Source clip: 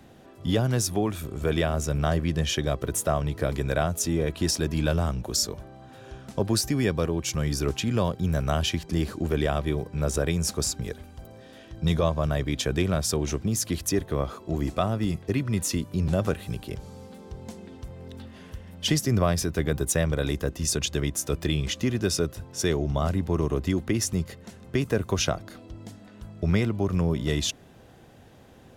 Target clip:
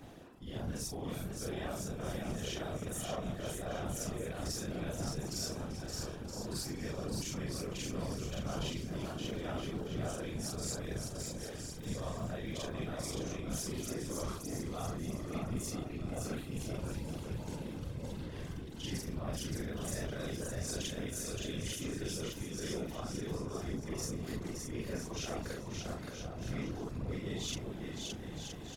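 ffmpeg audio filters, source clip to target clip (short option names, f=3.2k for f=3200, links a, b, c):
-af "afftfilt=real='re':imag='-im':win_size=4096:overlap=0.75,areverse,acompressor=threshold=-44dB:ratio=4,areverse,aecho=1:1:570|969|1248|1444|1581:0.631|0.398|0.251|0.158|0.1,asoftclip=type=tanh:threshold=-29.5dB,afftfilt=real='hypot(re,im)*cos(2*PI*random(0))':imag='hypot(re,im)*sin(2*PI*random(1))':win_size=512:overlap=0.75,volume=10dB"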